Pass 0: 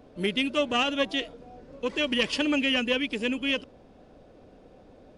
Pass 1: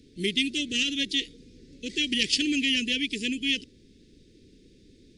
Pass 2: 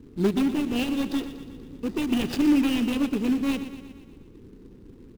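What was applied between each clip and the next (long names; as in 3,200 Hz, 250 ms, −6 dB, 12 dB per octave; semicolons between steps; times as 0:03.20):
elliptic band-stop filter 390–2,000 Hz, stop band 60 dB; flat-topped bell 5,800 Hz +10 dB
running median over 41 samples; on a send: repeating echo 120 ms, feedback 59%, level −12 dB; on the sum: level +8.5 dB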